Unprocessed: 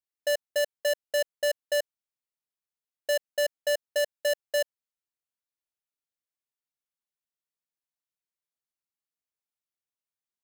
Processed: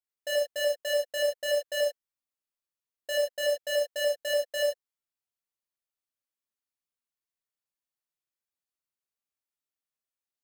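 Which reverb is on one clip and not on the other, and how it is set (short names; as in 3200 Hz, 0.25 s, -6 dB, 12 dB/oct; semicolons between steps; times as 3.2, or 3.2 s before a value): non-linear reverb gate 0.12 s flat, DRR -3 dB; gain -6.5 dB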